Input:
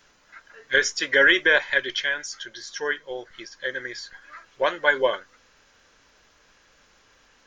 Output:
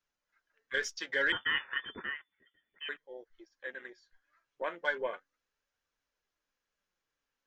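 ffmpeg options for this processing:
-filter_complex "[0:a]afwtdn=0.02,flanger=delay=0.7:depth=6.9:regen=68:speed=0.34:shape=triangular,asettb=1/sr,asplit=3[a][b][c];[a]atrim=end=1.324[d];[b]atrim=start=1.32:end=2.89,asetpts=PTS-STARTPTS,afade=t=in:d=0.004:c=qsin,afade=t=out:st=1.566:d=0.004:c=qsin,lowpass=f=3k:t=q:w=0.5098,lowpass=f=3k:t=q:w=0.6013,lowpass=f=3k:t=q:w=0.9,lowpass=f=3k:t=q:w=2.563,afreqshift=-3500[e];[c]atrim=start=2.886[f];[d][e]acrossfade=d=0.004:c1=hsin:c2=qsin[g];[g][f]acrossfade=d=0.004:c1=qsin:c2=hsin,volume=-8.5dB"

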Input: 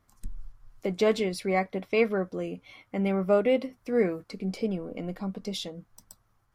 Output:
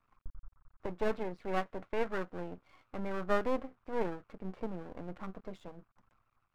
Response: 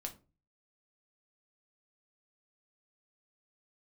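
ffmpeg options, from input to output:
-af "lowpass=f=1.3k:t=q:w=3.2,aeval=exprs='max(val(0),0)':c=same,volume=-6dB"

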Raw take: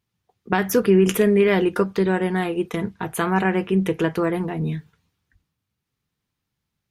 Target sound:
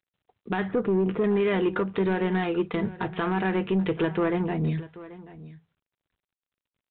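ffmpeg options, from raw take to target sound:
-filter_complex "[0:a]asettb=1/sr,asplit=3[a][b][c];[a]atrim=end=0.714[d];[b]atrim=start=0.71:end=1.24,asetpts=PTS-STARTPTS,afade=t=in:d=0.004:c=qsin,afade=t=out:st=0.526:d=0.004:c=qsin,lowpass=1.2k[e];[c]atrim=start=1.236[f];[d][e]acrossfade=d=0.004:c1=hsin:c2=qsin[g];[g][f]acrossfade=d=0.004:c1=qsin:c2=hsin,bandreject=f=82.68:t=h:w=4,bandreject=f=165.36:t=h:w=4,alimiter=limit=-13.5dB:level=0:latency=1:release=168,asoftclip=type=tanh:threshold=-17dB,aecho=1:1:784:0.133" -ar 8000 -c:a adpcm_g726 -b:a 40k

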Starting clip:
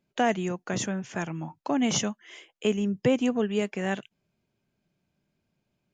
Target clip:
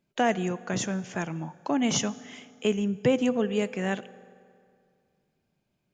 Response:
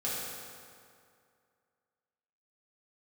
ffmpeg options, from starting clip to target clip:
-filter_complex "[0:a]asplit=2[a][b];[1:a]atrim=start_sample=2205,adelay=6[c];[b][c]afir=irnorm=-1:irlink=0,volume=-22dB[d];[a][d]amix=inputs=2:normalize=0"

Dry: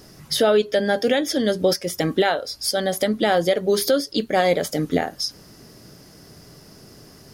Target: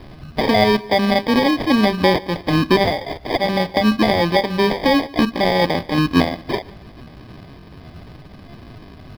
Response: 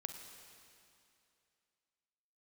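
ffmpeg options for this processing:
-af "bass=f=250:g=13,treble=f=4k:g=10,aecho=1:1:3.3:0.37,aresample=11025,acrusher=samples=8:mix=1:aa=0.000001,aresample=44100,atempo=0.8,acrusher=bits=7:mode=log:mix=0:aa=0.000001,aecho=1:1:146|292:0.0708|0.0234"

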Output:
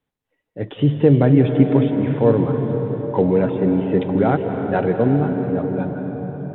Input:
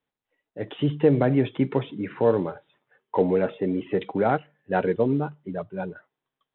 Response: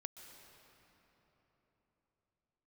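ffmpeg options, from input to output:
-filter_complex "[0:a]lowshelf=f=240:g=10.5[a];[1:a]atrim=start_sample=2205,asetrate=31752,aresample=44100[b];[a][b]afir=irnorm=-1:irlink=0,volume=5dB"

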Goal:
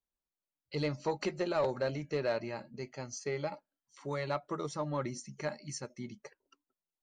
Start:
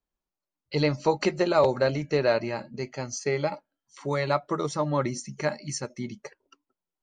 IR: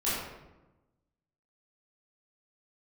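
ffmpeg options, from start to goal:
-af "asoftclip=type=tanh:threshold=-13.5dB,volume=-8.5dB"

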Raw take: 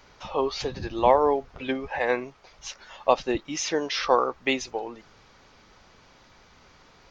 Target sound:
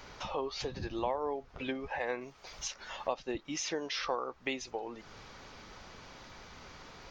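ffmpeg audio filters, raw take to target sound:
-filter_complex "[0:a]asettb=1/sr,asplit=3[a][b][c];[a]atrim=end=2.214[d];[b]atrim=start=2.21:end=2.68,asetpts=PTS-STARTPTS,afade=t=in:d=0.004:c=qsin,afade=t=out:st=0.466:d=0.004:c=qsin,highshelf=f=4.3k:g=8.5[e];[c]atrim=start=2.676[f];[d][e]acrossfade=d=0.004:c1=hsin:c2=qsin[g];[g][f]acrossfade=d=0.004:c1=qsin:c2=hsin,acompressor=threshold=-44dB:ratio=2.5,volume=4dB"

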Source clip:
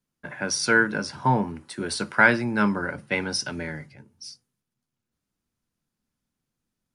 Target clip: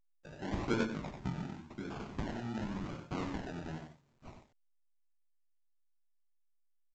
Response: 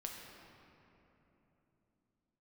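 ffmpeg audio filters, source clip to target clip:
-filter_complex "[0:a]agate=range=-32dB:threshold=-41dB:ratio=16:detection=peak,acrossover=split=1000[a][b];[a]aeval=exprs='val(0)*(1-0.5/2+0.5/2*cos(2*PI*6.2*n/s))':c=same[c];[b]aeval=exprs='val(0)*(1-0.5/2-0.5/2*cos(2*PI*6.2*n/s))':c=same[d];[c][d]amix=inputs=2:normalize=0[e];[1:a]atrim=start_sample=2205,atrim=end_sample=3969[f];[e][f]afir=irnorm=-1:irlink=0,acrusher=samples=32:mix=1:aa=0.000001:lfo=1:lforange=19.2:lforate=0.91,equalizer=f=490:t=o:w=0.53:g=-9,aecho=1:1:93:0.447,asettb=1/sr,asplit=3[g][h][i];[g]atrim=end=0.844[j];[h]atrim=start=0.84:end=3.15,asetpts=PTS-STARTPTS,afade=t=in:d=0.004:c=qsin,afade=t=out:st=2.306:d=0.004:c=qsin,acompressor=threshold=-31dB:ratio=10[k];[i]atrim=start=3.146[l];[j][k]acrossfade=d=0.004:c1=hsin:c2=qsin[m];[m][l]acrossfade=d=0.004:c1=qsin:c2=hsin,highshelf=f=2.8k:g=-10,volume=-3dB" -ar 16000 -c:a pcm_alaw

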